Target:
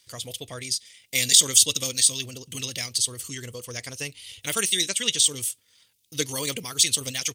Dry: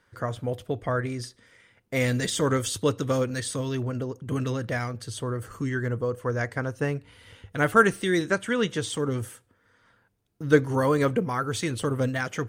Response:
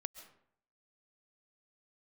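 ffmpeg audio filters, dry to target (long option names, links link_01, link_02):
-af "atempo=1.7,aexciter=amount=15.6:drive=7:freq=2400,volume=-10.5dB"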